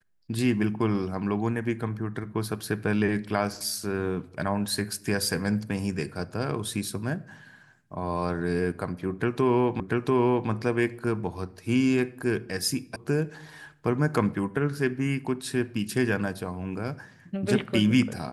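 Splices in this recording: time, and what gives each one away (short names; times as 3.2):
9.8 repeat of the last 0.69 s
12.96 sound cut off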